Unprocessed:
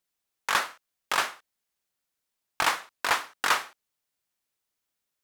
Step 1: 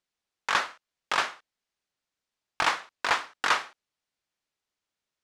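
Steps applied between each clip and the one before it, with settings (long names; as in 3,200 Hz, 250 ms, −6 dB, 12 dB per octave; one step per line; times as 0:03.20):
low-pass filter 6,100 Hz 12 dB per octave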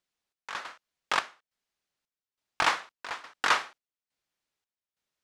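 gate pattern "xxx...xx" 139 BPM −12 dB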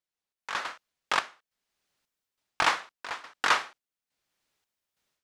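automatic gain control gain up to 16.5 dB
level −8.5 dB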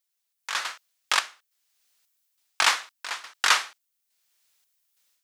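spectral tilt +4 dB per octave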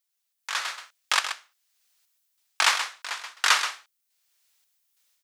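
high-pass filter 400 Hz 6 dB per octave
single-tap delay 129 ms −9 dB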